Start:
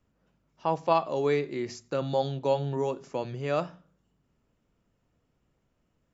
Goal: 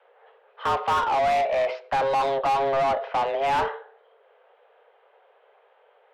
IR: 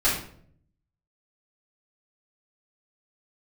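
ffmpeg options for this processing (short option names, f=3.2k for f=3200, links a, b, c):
-filter_complex "[0:a]highpass=f=180:t=q:w=0.5412,highpass=f=180:t=q:w=1.307,lowpass=f=3.4k:t=q:w=0.5176,lowpass=f=3.4k:t=q:w=0.7071,lowpass=f=3.4k:t=q:w=1.932,afreqshift=270,asplit=2[a][b];[b]highpass=f=720:p=1,volume=32dB,asoftclip=type=tanh:threshold=-10.5dB[c];[a][c]amix=inputs=2:normalize=0,lowpass=f=1.4k:p=1,volume=-6dB,volume=-3.5dB"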